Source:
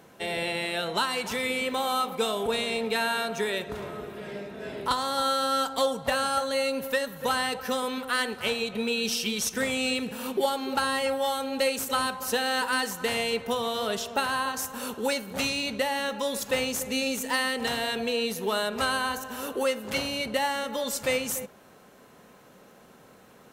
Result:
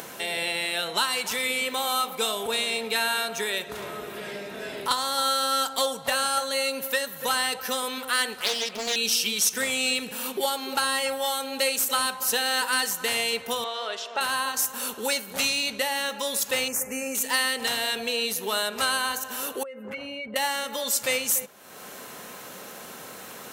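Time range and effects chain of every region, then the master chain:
8.41–8.96 s: high-pass 160 Hz 24 dB/octave + loudspeaker Doppler distortion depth 0.59 ms
13.64–14.21 s: band-pass 480–6000 Hz + treble shelf 4.4 kHz -11 dB
16.68–17.15 s: Butterworth band-stop 3.7 kHz, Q 0.95 + tone controls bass +1 dB, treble -3 dB
19.63–20.36 s: spectral contrast enhancement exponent 1.6 + resonant high shelf 2.8 kHz -11.5 dB, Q 1.5 + compression, threshold -35 dBFS
whole clip: tilt EQ +2.5 dB/octave; upward compressor, threshold -29 dBFS

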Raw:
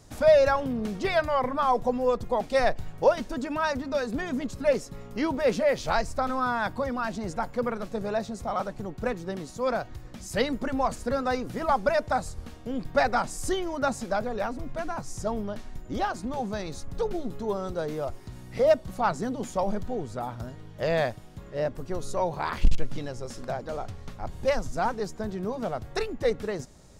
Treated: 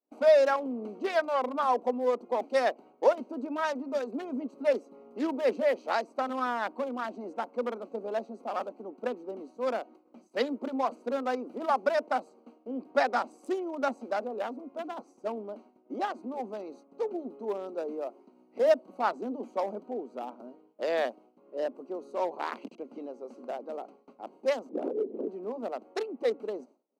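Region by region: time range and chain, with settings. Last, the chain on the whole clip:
24.69–25.28 s: resonant low shelf 660 Hz +13 dB, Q 3 + compression 12:1, threshold -23 dBFS + LPC vocoder at 8 kHz whisper
whole clip: local Wiener filter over 25 samples; steep high-pass 240 Hz 48 dB/octave; expander -47 dBFS; trim -2 dB

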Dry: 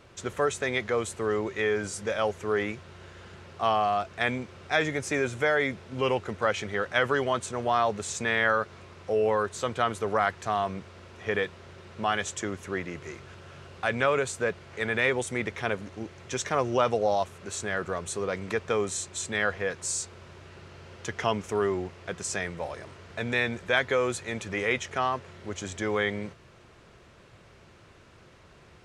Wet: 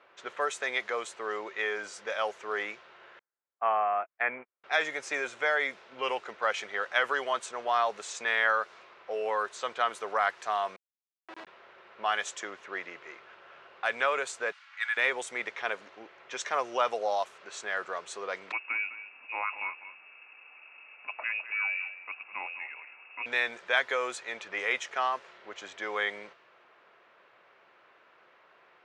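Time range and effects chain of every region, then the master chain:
3.19–4.64 s: steep low-pass 2.5 kHz 48 dB/octave + gate -35 dBFS, range -45 dB
10.76–11.47 s: robot voice 324 Hz + Schmitt trigger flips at -33.5 dBFS + swell ahead of each attack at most 140 dB/s
14.52–14.97 s: high-pass 1.2 kHz 24 dB/octave + comb 3.6 ms, depth 43%
18.52–23.26 s: peaking EQ 840 Hz -9 dB 2.1 oct + delay 206 ms -13 dB + frequency inversion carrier 2.7 kHz
whole clip: high-pass 690 Hz 12 dB/octave; level-controlled noise filter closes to 2.4 kHz, open at -26 dBFS; treble shelf 6.4 kHz -6.5 dB

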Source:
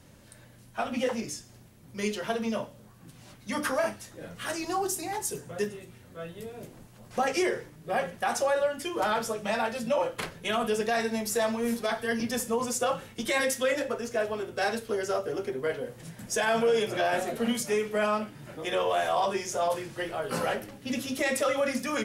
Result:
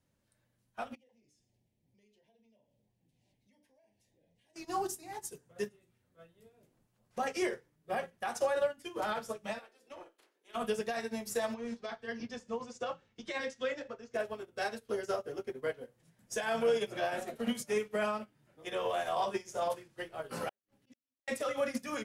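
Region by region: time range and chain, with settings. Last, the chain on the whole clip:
0.95–4.56 s: treble shelf 5.8 kHz -7.5 dB + compression 4:1, threshold -46 dBFS + Butterworth band-stop 1.3 kHz, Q 1.2
9.58–10.54 s: spectral peaks clipped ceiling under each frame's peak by 14 dB + ladder high-pass 300 Hz, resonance 50% + valve stage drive 28 dB, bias 0.25
11.54–14.14 s: low-pass 6.3 kHz 24 dB/octave + compression 1.5:1, threshold -32 dBFS
20.49–21.28 s: slow attack 175 ms + inverted gate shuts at -29 dBFS, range -42 dB
whole clip: peak limiter -20.5 dBFS; upward expansion 2.5:1, over -41 dBFS

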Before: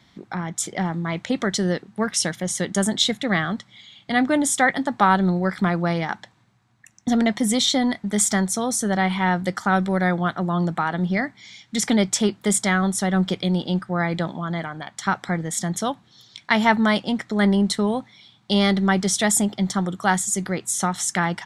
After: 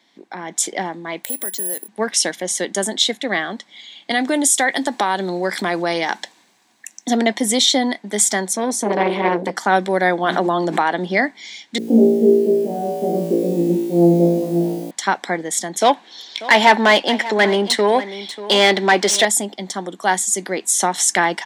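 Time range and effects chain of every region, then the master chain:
1.24–1.88 s: compression 2.5:1, threshold -34 dBFS + careless resampling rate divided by 4×, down filtered, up zero stuff
4.11–7.10 s: treble shelf 3.9 kHz +10.5 dB + compression 2.5:1, threshold -23 dBFS
8.53–9.57 s: tilt EQ -2 dB/octave + transformer saturation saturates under 670 Hz
10.23–10.82 s: hum notches 60/120/180/240/300/360/420 Hz + level flattener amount 100%
11.78–14.91 s: inverse Chebyshev low-pass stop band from 2.2 kHz, stop band 70 dB + word length cut 10-bit, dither triangular + flutter echo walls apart 3 m, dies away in 1.1 s
15.81–19.25 s: band-stop 1.2 kHz, Q 18 + overdrive pedal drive 20 dB, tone 2.8 kHz, clips at -3.5 dBFS + delay 590 ms -15.5 dB
whole clip: high-pass 270 Hz 24 dB/octave; peaking EQ 1.3 kHz -11.5 dB 0.27 oct; level rider gain up to 11.5 dB; trim -1 dB

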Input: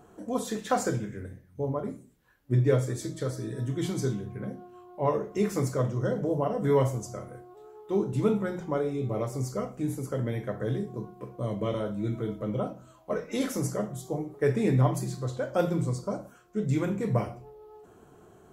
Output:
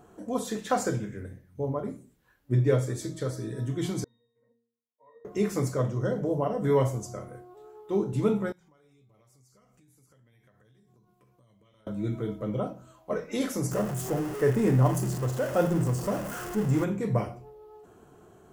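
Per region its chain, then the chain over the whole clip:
4.04–5.25 s: expander -36 dBFS + high-pass 620 Hz + pitch-class resonator A#, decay 0.59 s
8.52–11.87 s: amplifier tone stack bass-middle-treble 5-5-5 + compression 16:1, threshold -58 dBFS
13.71–16.84 s: jump at every zero crossing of -30.5 dBFS + peaking EQ 3.9 kHz -10.5 dB 0.57 oct + band-stop 2.3 kHz, Q 9.4
whole clip: none

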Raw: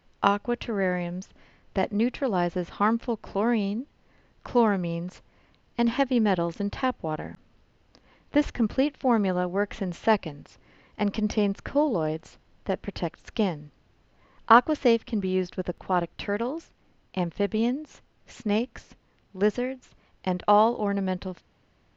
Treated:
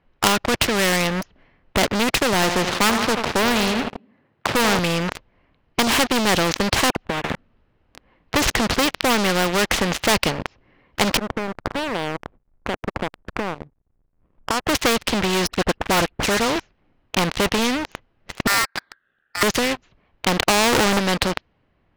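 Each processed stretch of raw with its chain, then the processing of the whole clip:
2.33–4.79 s: high-pass 99 Hz 24 dB/octave + treble shelf 5.8 kHz -9.5 dB + feedback delay 83 ms, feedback 54%, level -14 dB
6.90–7.30 s: compression 3:1, threshold -40 dBFS + phase dispersion lows, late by 60 ms, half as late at 2 kHz
11.17–14.67 s: low-pass 1.3 kHz 24 dB/octave + compression 2.5:1, threshold -44 dBFS + hysteresis with a dead band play -52 dBFS
15.47–16.56 s: distance through air 350 m + phase dispersion highs, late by 64 ms, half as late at 2.4 kHz
18.47–19.43 s: low-pass 2.8 kHz 24 dB/octave + touch-sensitive phaser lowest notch 540 Hz, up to 1.6 kHz, full sweep at -29 dBFS + ring modulator 1.6 kHz
20.50–20.99 s: low-pass 1.4 kHz + level flattener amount 100%
whole clip: level-controlled noise filter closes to 2.5 kHz, open at -18.5 dBFS; waveshaping leveller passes 5; spectrum-flattening compressor 2:1; trim +3 dB

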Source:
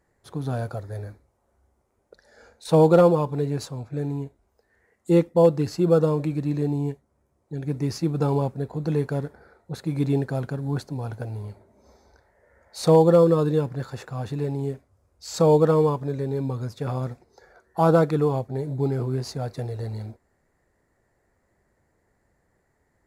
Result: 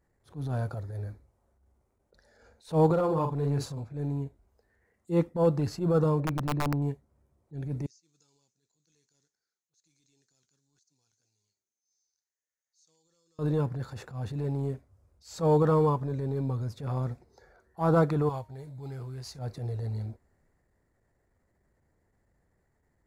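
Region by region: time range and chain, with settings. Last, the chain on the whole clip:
2.86–3.84 s: doubling 43 ms -7 dB + compression 10:1, threshold -18 dBFS
6.20–6.82 s: low-pass 1.1 kHz 6 dB/octave + integer overflow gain 17 dB
7.86–13.39 s: band-pass filter 6.6 kHz, Q 4.8 + compression 4:1, threshold -59 dBFS + FFT filter 360 Hz 0 dB, 620 Hz -10 dB, 6.2 kHz +4 dB, 8.9 kHz -7 dB
18.29–19.39 s: peaking EQ 250 Hz -14.5 dB 2.9 oct + de-hum 309.4 Hz, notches 40
whole clip: bass shelf 190 Hz +8.5 dB; transient shaper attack -11 dB, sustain +2 dB; dynamic bell 1.1 kHz, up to +6 dB, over -37 dBFS, Q 1.2; trim -7 dB

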